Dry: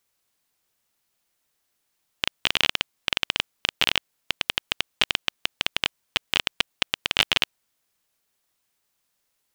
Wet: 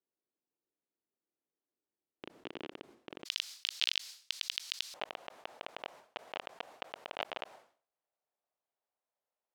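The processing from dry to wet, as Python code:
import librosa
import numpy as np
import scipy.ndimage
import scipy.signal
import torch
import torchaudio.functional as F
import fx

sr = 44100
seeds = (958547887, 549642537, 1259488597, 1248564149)

y = fx.bandpass_q(x, sr, hz=fx.steps((0.0, 340.0), (3.25, 4600.0), (4.94, 660.0)), q=2.1)
y = fx.sustainer(y, sr, db_per_s=130.0)
y = F.gain(torch.from_numpy(y), -4.5).numpy()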